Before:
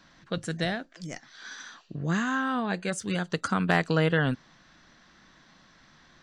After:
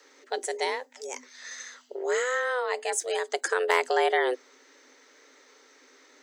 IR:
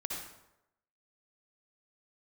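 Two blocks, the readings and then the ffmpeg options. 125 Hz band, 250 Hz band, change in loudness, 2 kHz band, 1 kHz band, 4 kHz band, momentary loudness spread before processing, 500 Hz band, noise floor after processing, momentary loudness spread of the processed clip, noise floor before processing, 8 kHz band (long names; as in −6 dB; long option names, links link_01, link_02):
below −40 dB, −15.5 dB, 0.0 dB, +1.0 dB, +3.0 dB, +1.0 dB, 17 LU, +5.0 dB, −58 dBFS, 16 LU, −59 dBFS, +7.5 dB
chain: -af "afreqshift=250,aexciter=amount=2.6:drive=5.6:freq=6000"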